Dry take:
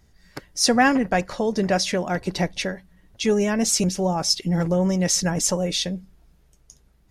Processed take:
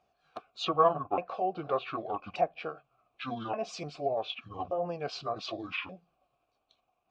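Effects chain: repeated pitch sweeps -11.5 st, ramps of 1.178 s; vowel filter a; treble ducked by the level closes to 2000 Hz, closed at -34 dBFS; gain +6.5 dB

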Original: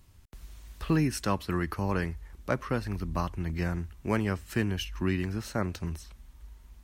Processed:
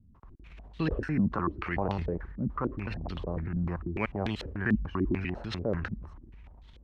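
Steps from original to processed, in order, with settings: slices in reverse order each 99 ms, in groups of 2; transient shaper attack -2 dB, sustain +10 dB; stepped low-pass 6.8 Hz 220–3600 Hz; gain -3.5 dB

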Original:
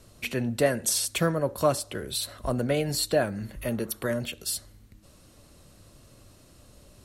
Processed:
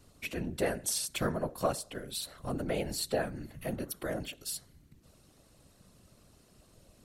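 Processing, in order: whisperiser; gain -7 dB

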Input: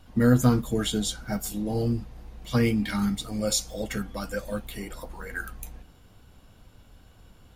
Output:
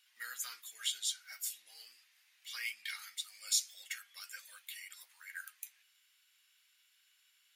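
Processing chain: Chebyshev high-pass 2000 Hz, order 3; gain -4 dB

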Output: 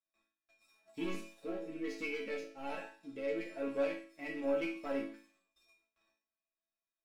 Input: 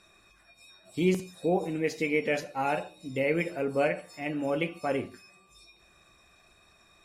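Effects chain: rattling part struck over -36 dBFS, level -36 dBFS; LPF 3900 Hz 6 dB/oct; low shelf 160 Hz -7.5 dB; gate with hold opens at -51 dBFS; sample leveller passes 2; 1.43–4.19 rotary speaker horn 1.2 Hz; resonator bank A3 major, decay 0.42 s; gain +6.5 dB

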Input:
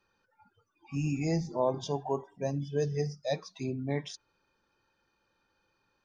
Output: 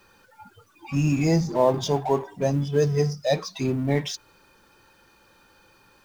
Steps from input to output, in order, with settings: G.711 law mismatch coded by mu; gain +8 dB

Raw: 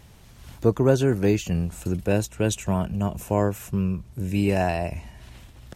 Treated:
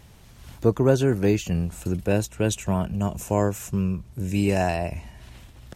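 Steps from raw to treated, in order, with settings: 2.86–4.76 dynamic EQ 6800 Hz, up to +7 dB, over -58 dBFS, Q 1.6

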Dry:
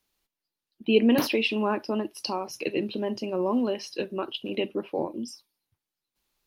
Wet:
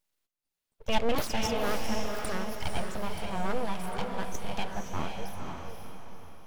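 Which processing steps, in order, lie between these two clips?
full-wave rectifier; diffused feedback echo 0.512 s, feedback 42%, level -3.5 dB; gain -3 dB

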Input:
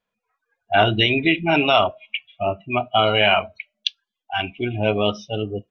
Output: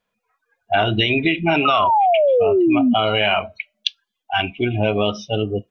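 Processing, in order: painted sound fall, 1.65–2.94, 230–1300 Hz -15 dBFS; in parallel at 0 dB: limiter -9.5 dBFS, peak gain reduction 8 dB; on the sum: compressor 4:1, threshold -13 dBFS, peak gain reduction 7 dB; gain -1 dB

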